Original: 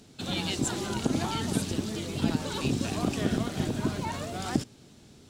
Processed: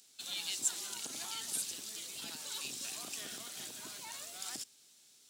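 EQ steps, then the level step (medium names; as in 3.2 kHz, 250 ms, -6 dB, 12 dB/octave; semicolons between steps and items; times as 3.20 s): differentiator; +1.0 dB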